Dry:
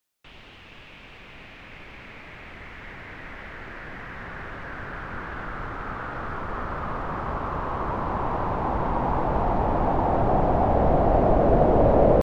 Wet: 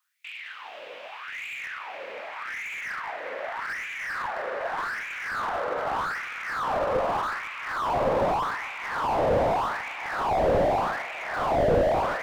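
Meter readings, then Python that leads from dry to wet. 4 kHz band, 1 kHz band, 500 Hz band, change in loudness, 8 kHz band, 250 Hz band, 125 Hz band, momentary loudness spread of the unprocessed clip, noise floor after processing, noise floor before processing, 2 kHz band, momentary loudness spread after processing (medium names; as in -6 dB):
+7.5 dB, -1.0 dB, -2.0 dB, -3.0 dB, no reading, -9.0 dB, -10.0 dB, 22 LU, -42 dBFS, -47 dBFS, +6.0 dB, 14 LU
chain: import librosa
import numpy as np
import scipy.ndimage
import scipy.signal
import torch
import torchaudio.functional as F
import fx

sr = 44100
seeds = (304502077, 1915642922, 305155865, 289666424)

y = fx.echo_split(x, sr, split_hz=890.0, low_ms=148, high_ms=199, feedback_pct=52, wet_db=-3.5)
y = fx.filter_lfo_highpass(y, sr, shape='sine', hz=0.83, low_hz=510.0, high_hz=2400.0, q=6.9)
y = fx.slew_limit(y, sr, full_power_hz=53.0)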